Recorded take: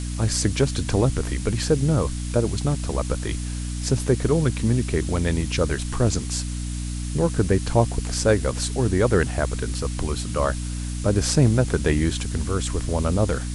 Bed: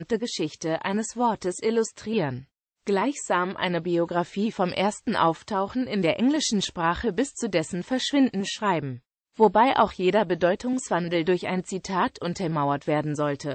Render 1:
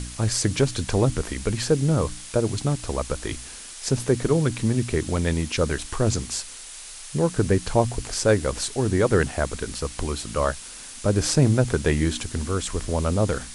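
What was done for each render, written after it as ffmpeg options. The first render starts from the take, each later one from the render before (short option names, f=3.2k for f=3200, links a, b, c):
-af "bandreject=f=60:t=h:w=4,bandreject=f=120:t=h:w=4,bandreject=f=180:t=h:w=4,bandreject=f=240:t=h:w=4,bandreject=f=300:t=h:w=4"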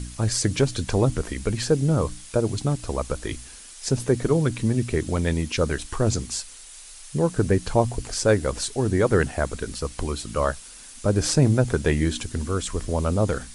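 -af "afftdn=nr=6:nf=-40"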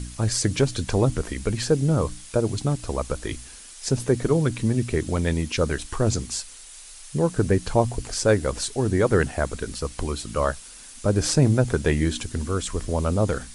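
-af anull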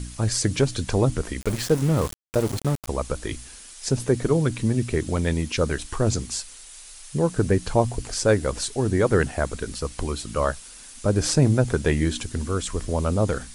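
-filter_complex "[0:a]asplit=3[a][b][c];[a]afade=t=out:st=1.4:d=0.02[d];[b]aeval=exprs='val(0)*gte(abs(val(0)),0.0376)':c=same,afade=t=in:st=1.4:d=0.02,afade=t=out:st=2.87:d=0.02[e];[c]afade=t=in:st=2.87:d=0.02[f];[d][e][f]amix=inputs=3:normalize=0"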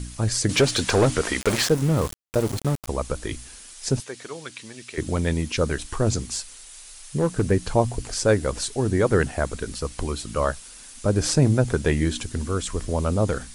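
-filter_complex "[0:a]asettb=1/sr,asplit=3[a][b][c];[a]atrim=end=0.494[d];[b]atrim=start=0.49:end=1.69,asetpts=PTS-STARTPTS,afade=t=in:d=0.004:c=qsin,afade=t=out:st=1.196:d=0.004:c=qsin,asplit=2[e][f];[f]highpass=f=720:p=1,volume=19dB,asoftclip=type=tanh:threshold=-8.5dB[g];[e][g]amix=inputs=2:normalize=0,lowpass=f=4.9k:p=1,volume=-6dB[h];[c]atrim=start=1.686[i];[d][h]acrossfade=d=0.004:c1=hsin:c2=qsin[j];[j][i]acrossfade=d=0.004:c1=qsin:c2=hsin,asettb=1/sr,asplit=3[k][l][m];[k]atrim=end=4.004[n];[l]atrim=start=4:end=4.98,asetpts=PTS-STARTPTS,afade=t=in:d=0.004:c=qsin,afade=t=out:st=0.976:d=0.004:c=qsin,bandpass=f=3.7k:t=q:w=0.6[o];[m]atrim=start=4.976[p];[n][o]acrossfade=d=0.004:c1=hsin:c2=qsin[q];[q][p]acrossfade=d=0.004:c1=qsin:c2=hsin,asettb=1/sr,asplit=3[r][s][t];[r]atrim=end=6.304[u];[s]atrim=start=6.3:end=7.51,asetpts=PTS-STARTPTS,afade=t=in:d=0.004:c=qsin,afade=t=out:st=1.206:d=0.004:c=qsin,asoftclip=type=hard:threshold=-14dB[v];[t]atrim=start=7.506[w];[u][v]acrossfade=d=0.004:c1=hsin:c2=qsin[x];[x][w]acrossfade=d=0.004:c1=qsin:c2=hsin"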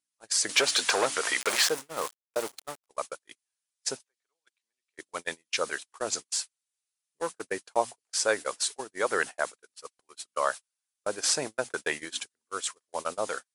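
-af "highpass=750,agate=range=-44dB:threshold=-32dB:ratio=16:detection=peak"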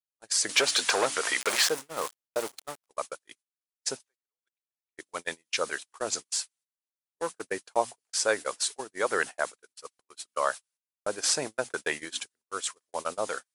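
-af "agate=range=-18dB:threshold=-59dB:ratio=16:detection=peak"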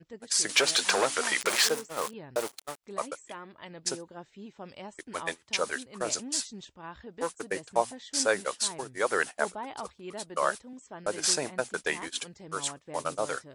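-filter_complex "[1:a]volume=-19.5dB[a];[0:a][a]amix=inputs=2:normalize=0"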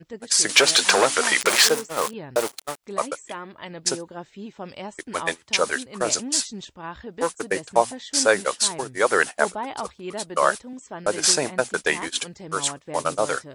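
-af "volume=8dB,alimiter=limit=-3dB:level=0:latency=1"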